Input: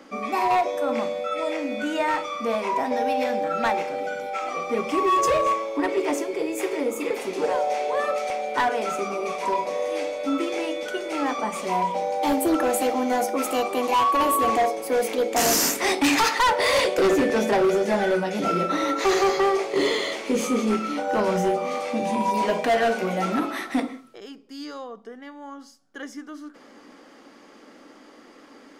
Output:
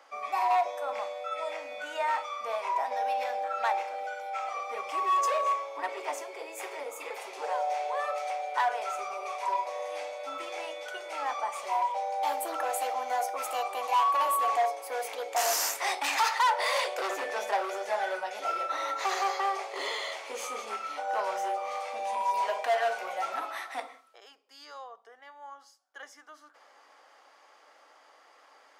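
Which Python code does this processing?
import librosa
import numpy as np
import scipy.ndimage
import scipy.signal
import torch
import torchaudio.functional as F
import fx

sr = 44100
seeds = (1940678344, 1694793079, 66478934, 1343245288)

y = fx.ladder_highpass(x, sr, hz=600.0, resonance_pct=35)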